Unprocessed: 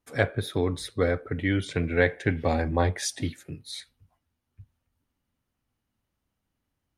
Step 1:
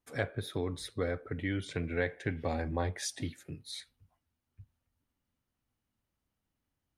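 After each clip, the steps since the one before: compression 1.5:1, threshold -32 dBFS, peak gain reduction 6 dB; trim -4.5 dB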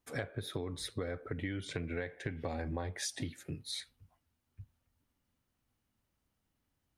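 compression 10:1, threshold -37 dBFS, peak gain reduction 12 dB; trim +3 dB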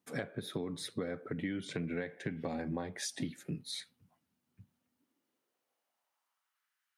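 high-pass sweep 180 Hz -> 1.5 kHz, 4.68–6.70 s; trim -1 dB

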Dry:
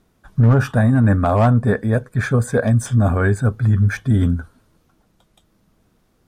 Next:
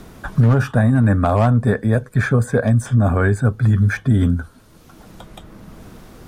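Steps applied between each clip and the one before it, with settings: three bands compressed up and down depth 70%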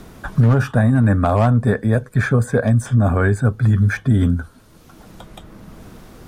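no audible change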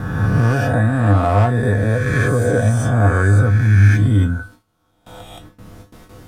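reverse spectral sustain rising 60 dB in 1.82 s; gate with hold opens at -27 dBFS; feedback comb 100 Hz, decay 0.23 s, harmonics odd, mix 80%; trim +6 dB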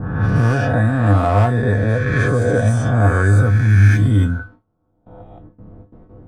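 level-controlled noise filter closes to 560 Hz, open at -9.5 dBFS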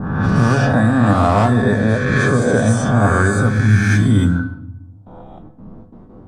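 graphic EQ 250/1000/4000/8000 Hz +6/+7/+6/+7 dB; simulated room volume 3200 m³, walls furnished, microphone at 1.2 m; trim -1 dB

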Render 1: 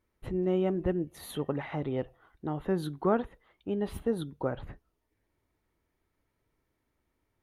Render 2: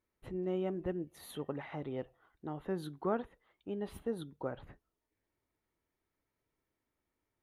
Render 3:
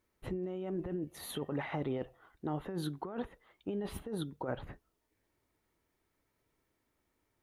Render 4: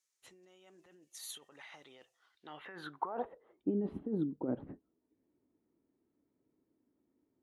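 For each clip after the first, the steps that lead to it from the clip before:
bass shelf 120 Hz -6.5 dB; trim -6.5 dB
compressor with a negative ratio -40 dBFS, ratio -1; trim +3.5 dB
band-pass sweep 6.7 kHz -> 270 Hz, 2.12–3.68 s; trim +9 dB

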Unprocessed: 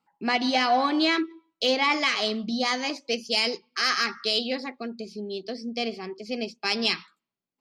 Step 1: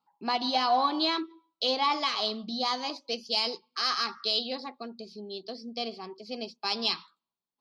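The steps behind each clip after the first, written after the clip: graphic EQ 1/2/4/8 kHz +11/-9/+11/-7 dB; trim -8 dB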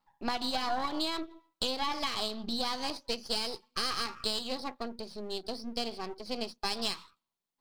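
partial rectifier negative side -12 dB; compression 5:1, threshold -33 dBFS, peak gain reduction 11 dB; trim +5 dB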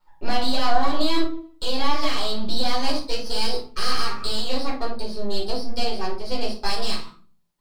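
peak limiter -21.5 dBFS, peak gain reduction 8 dB; simulated room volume 250 m³, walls furnished, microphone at 4.6 m; trim +1.5 dB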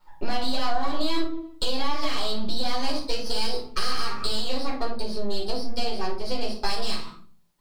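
compression 2.5:1, threshold -28 dBFS, peak gain reduction 13 dB; trim +6 dB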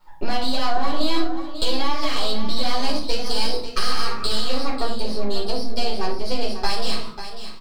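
delay 543 ms -10.5 dB; trim +3.5 dB

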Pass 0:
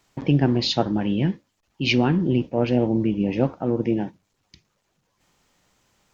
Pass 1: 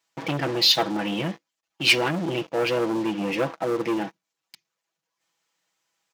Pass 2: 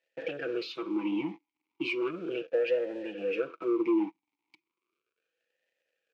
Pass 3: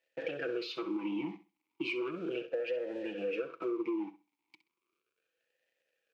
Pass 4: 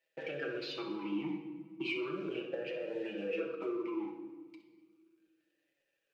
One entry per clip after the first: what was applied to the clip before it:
comb 6.1 ms, depth 73%; waveshaping leveller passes 3; high-pass 1 kHz 6 dB/octave; trim -4.5 dB
compression 5:1, threshold -25 dBFS, peak gain reduction 11 dB; crackle 170 per s -56 dBFS; talking filter e-u 0.35 Hz; trim +6.5 dB
compression, threshold -32 dBFS, peak gain reduction 9 dB; flutter echo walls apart 11 m, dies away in 0.29 s
simulated room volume 1400 m³, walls mixed, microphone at 1.2 m; flange 0.59 Hz, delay 6.1 ms, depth 1.2 ms, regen +47%; trim +1.5 dB

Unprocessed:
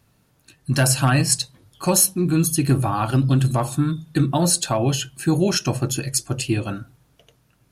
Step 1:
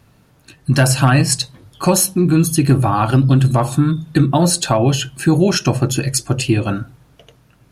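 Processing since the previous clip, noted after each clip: treble shelf 4.6 kHz -7 dB; in parallel at +3 dB: compression, threshold -24 dBFS, peak gain reduction 11 dB; on the sum: trim +2 dB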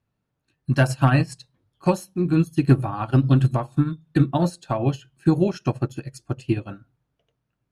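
treble shelf 5.6 kHz -9 dB; upward expansion 2.5:1, over -24 dBFS; trim -1.5 dB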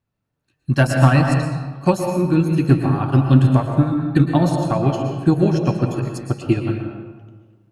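level rider gain up to 8.5 dB; on a send at -3 dB: reverberation RT60 1.4 s, pre-delay 109 ms; on the sum: trim -2 dB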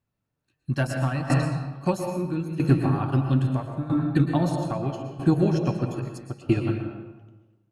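in parallel at -3 dB: peak limiter -11 dBFS, peak gain reduction 9.5 dB; on the sum: tremolo saw down 0.77 Hz, depth 75%; trim -7 dB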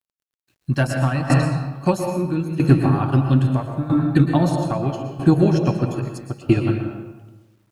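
bit crusher 12-bit; trim +5.5 dB

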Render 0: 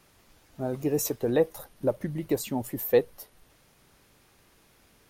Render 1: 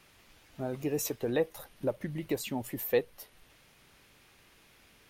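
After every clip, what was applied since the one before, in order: peaking EQ 2.6 kHz +7 dB 1.5 oct; in parallel at -1.5 dB: compression, threshold -34 dBFS, peak gain reduction 17.5 dB; on the sum: trim -7.5 dB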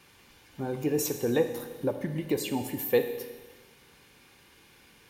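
comb of notches 650 Hz; Schroeder reverb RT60 1.4 s, combs from 26 ms, DRR 7.5 dB; trim +4 dB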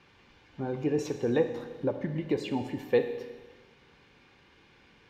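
distance through air 170 m

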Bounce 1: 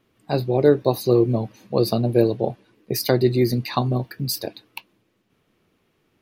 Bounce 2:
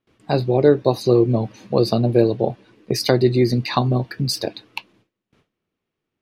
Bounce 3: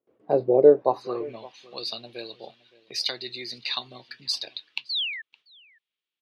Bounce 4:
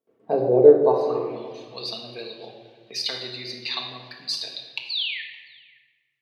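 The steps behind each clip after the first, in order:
gate with hold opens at -54 dBFS; low-pass 7.6 kHz 12 dB/octave; in parallel at +1 dB: compression, threshold -27 dBFS, peak gain reduction 16.5 dB
painted sound fall, 4.89–5.22 s, 1.7–4.7 kHz -28 dBFS; band-pass sweep 500 Hz -> 3.5 kHz, 0.67–1.49 s; echo from a far wall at 97 m, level -21 dB; trim +2.5 dB
simulated room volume 1300 m³, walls mixed, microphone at 1.6 m; trim -1 dB

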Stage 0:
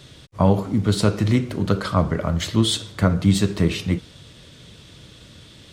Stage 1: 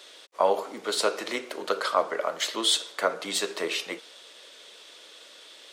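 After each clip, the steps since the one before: high-pass 450 Hz 24 dB/octave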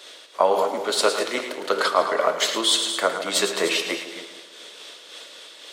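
chunks repeated in reverse 176 ms, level -12.5 dB; two-band feedback delay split 850 Hz, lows 149 ms, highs 109 ms, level -9 dB; random flutter of the level, depth 55%; trim +8.5 dB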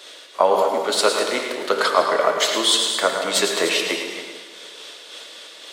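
reverberation RT60 1.2 s, pre-delay 77 ms, DRR 6.5 dB; trim +2 dB

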